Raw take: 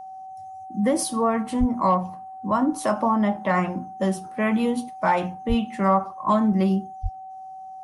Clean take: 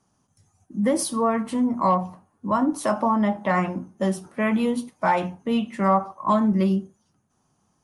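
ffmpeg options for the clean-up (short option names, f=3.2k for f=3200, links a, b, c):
-filter_complex "[0:a]bandreject=f=760:w=30,asplit=3[a][b][c];[a]afade=t=out:st=1.59:d=0.02[d];[b]highpass=f=140:w=0.5412,highpass=f=140:w=1.3066,afade=t=in:st=1.59:d=0.02,afade=t=out:st=1.71:d=0.02[e];[c]afade=t=in:st=1.71:d=0.02[f];[d][e][f]amix=inputs=3:normalize=0,asplit=3[g][h][i];[g]afade=t=out:st=5.48:d=0.02[j];[h]highpass=f=140:w=0.5412,highpass=f=140:w=1.3066,afade=t=in:st=5.48:d=0.02,afade=t=out:st=5.6:d=0.02[k];[i]afade=t=in:st=5.6:d=0.02[l];[j][k][l]amix=inputs=3:normalize=0,asplit=3[m][n][o];[m]afade=t=out:st=7.02:d=0.02[p];[n]highpass=f=140:w=0.5412,highpass=f=140:w=1.3066,afade=t=in:st=7.02:d=0.02,afade=t=out:st=7.14:d=0.02[q];[o]afade=t=in:st=7.14:d=0.02[r];[p][q][r]amix=inputs=3:normalize=0"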